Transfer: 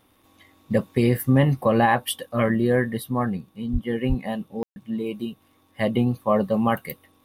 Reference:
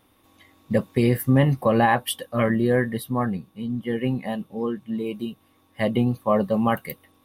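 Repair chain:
click removal
high-pass at the plosives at 0:03.72/0:04.08
ambience match 0:04.63–0:04.76

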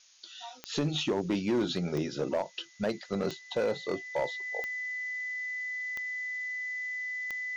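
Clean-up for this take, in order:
clipped peaks rebuilt −22.5 dBFS
click removal
notch filter 2,000 Hz, Q 30
broadband denoise 27 dB, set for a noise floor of −51 dBFS

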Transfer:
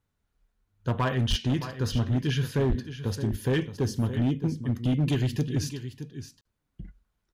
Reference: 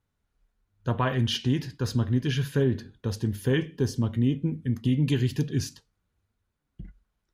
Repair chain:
clipped peaks rebuilt −19.5 dBFS
high-pass at the plosives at 0:01.29/0:02.68
repair the gap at 0:06.41, 42 ms
echo removal 618 ms −12 dB

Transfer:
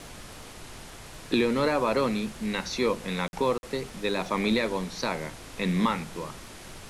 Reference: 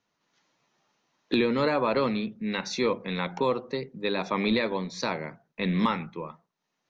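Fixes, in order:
click removal
repair the gap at 0:03.28/0:03.58, 51 ms
broadband denoise 30 dB, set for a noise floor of −44 dBFS

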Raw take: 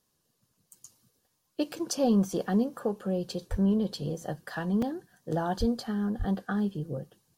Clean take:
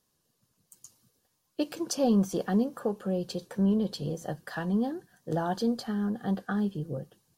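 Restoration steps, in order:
high-pass at the plosives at 0:03.50/0:05.59/0:06.18
repair the gap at 0:01.79/0:04.82, 3.8 ms

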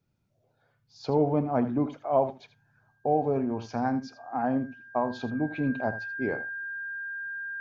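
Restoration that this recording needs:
notch filter 1,600 Hz, Q 30
echo removal 80 ms −13.5 dB

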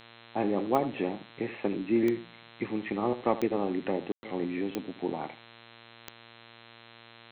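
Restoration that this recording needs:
click removal
hum removal 115.8 Hz, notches 36
ambience match 0:04.12–0:04.23
echo removal 79 ms −14.5 dB

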